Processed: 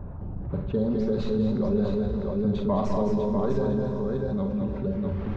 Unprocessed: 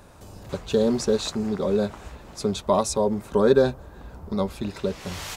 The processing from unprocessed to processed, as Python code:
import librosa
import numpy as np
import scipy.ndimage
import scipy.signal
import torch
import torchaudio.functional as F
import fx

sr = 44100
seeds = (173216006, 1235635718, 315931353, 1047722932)

y = fx.tracing_dist(x, sr, depth_ms=0.066)
y = fx.dereverb_blind(y, sr, rt60_s=1.7)
y = fx.env_lowpass(y, sr, base_hz=1100.0, full_db=-16.5)
y = fx.bass_treble(y, sr, bass_db=11, treble_db=6)
y = fx.tremolo_random(y, sr, seeds[0], hz=1.9, depth_pct=55)
y = fx.spacing_loss(y, sr, db_at_10k=31)
y = fx.doubler(y, sr, ms=35.0, db=-12.0)
y = fx.echo_multitap(y, sr, ms=(47, 206, 220, 648), db=(-7.5, -6.5, -7.5, -5.0))
y = fx.rev_plate(y, sr, seeds[1], rt60_s=3.8, hf_ratio=0.95, predelay_ms=0, drr_db=7.0)
y = fx.env_flatten(y, sr, amount_pct=50)
y = y * 10.0 ** (-7.0 / 20.0)